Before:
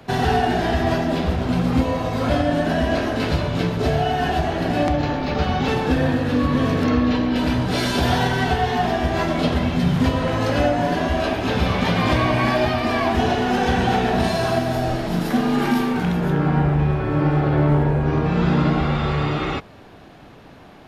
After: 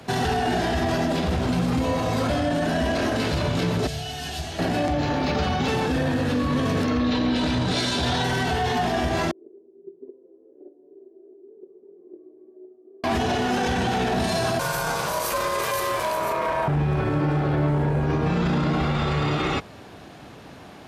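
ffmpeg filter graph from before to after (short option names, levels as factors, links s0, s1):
-filter_complex "[0:a]asettb=1/sr,asplit=3[s0][s1][s2];[s0]atrim=end=3.874[s3];[s1]atrim=start=3.87:end=4.59,asetpts=PTS-STARTPTS,afade=t=in:d=0.004:c=qsin,afade=t=out:st=0.716:d=0.004:c=qsin,lowshelf=f=120:g=-10,acrossover=split=120|3000[s4][s5][s6];[s5]acompressor=threshold=0.0178:ratio=10:attack=3.2:release=140:knee=2.83:detection=peak[s7];[s4][s7][s6]amix=inputs=3:normalize=0[s8];[s2]atrim=start=4.586[s9];[s3][s8]acrossfade=d=0.004:c1=hsin:c2=qsin[s10];[s10][s9]acrossfade=d=0.004:c1=qsin:c2=hsin,asettb=1/sr,asplit=3[s11][s12][s13];[s11]atrim=end=7.004[s14];[s12]atrim=start=7:end=8.24,asetpts=PTS-STARTPTS,afade=t=in:d=0.004:c=qsin,afade=t=out:st=1.236:d=0.004:c=qsin,lowpass=8100,equalizer=f=3800:t=o:w=0.22:g=7.5[s15];[s13]atrim=start=8.236[s16];[s14][s15]acrossfade=d=0.004:c1=hsin:c2=qsin[s17];[s17][s16]acrossfade=d=0.004:c1=qsin:c2=hsin,asettb=1/sr,asplit=3[s18][s19][s20];[s18]atrim=end=9.314[s21];[s19]atrim=start=9.31:end=13.04,asetpts=PTS-STARTPTS,afade=t=in:d=0.004:c=qsin,afade=t=out:st=3.726:d=0.004:c=qsin,agate=range=0.178:threshold=0.158:ratio=16:release=100:detection=peak,asuperpass=centerf=380:order=4:qfactor=5.9,asplit=2[s22][s23];[s23]adelay=23,volume=0.224[s24];[s22][s24]amix=inputs=2:normalize=0,atrim=end_sample=164493[s25];[s20]atrim=start=13.036[s26];[s21][s25]acrossfade=d=0.004:c1=hsin:c2=qsin[s27];[s27][s26]acrossfade=d=0.004:c1=qsin:c2=hsin,asettb=1/sr,asplit=3[s28][s29][s30];[s28]atrim=end=14.594[s31];[s29]atrim=start=14.59:end=16.68,asetpts=PTS-STARTPTS,afade=t=in:d=0.004:c=qsin,afade=t=out:st=2.086:d=0.004:c=qsin,aemphasis=mode=production:type=50kf,aeval=exprs='val(0)*sin(2*PI*800*n/s)':c=same[s32];[s30]atrim=start=16.676[s33];[s31][s32]acrossfade=d=0.004:c1=hsin:c2=qsin[s34];[s34][s33]acrossfade=d=0.004:c1=qsin:c2=hsin,highpass=52,equalizer=f=8100:t=o:w=1.5:g=7,alimiter=limit=0.15:level=0:latency=1:release=21,volume=1.12"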